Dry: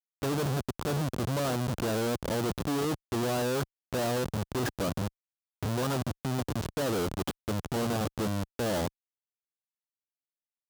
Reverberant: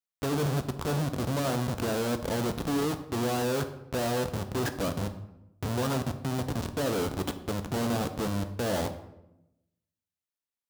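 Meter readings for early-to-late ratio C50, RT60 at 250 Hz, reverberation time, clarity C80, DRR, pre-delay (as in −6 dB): 12.0 dB, 1.1 s, 0.90 s, 14.0 dB, 7.5 dB, 3 ms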